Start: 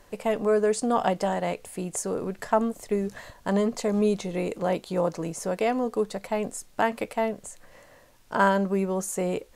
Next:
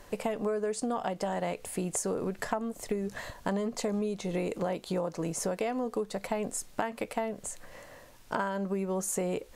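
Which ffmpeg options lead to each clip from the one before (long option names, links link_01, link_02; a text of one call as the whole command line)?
ffmpeg -i in.wav -af "acompressor=threshold=-31dB:ratio=12,volume=3dB" out.wav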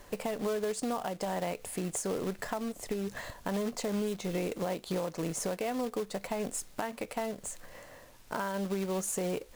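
ffmpeg -i in.wav -filter_complex "[0:a]asplit=2[link_01][link_02];[link_02]alimiter=limit=-24dB:level=0:latency=1:release=85,volume=2.5dB[link_03];[link_01][link_03]amix=inputs=2:normalize=0,acrusher=bits=3:mode=log:mix=0:aa=0.000001,volume=-8.5dB" out.wav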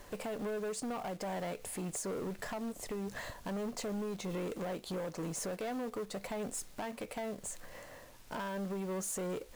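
ffmpeg -i in.wav -af "asoftclip=type=tanh:threshold=-34dB" out.wav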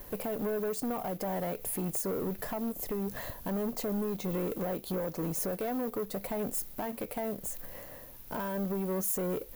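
ffmpeg -i in.wav -filter_complex "[0:a]asplit=2[link_01][link_02];[link_02]adynamicsmooth=sensitivity=3:basefreq=680,volume=-1dB[link_03];[link_01][link_03]amix=inputs=2:normalize=0,aexciter=amount=7.8:drive=4.4:freq=11000" out.wav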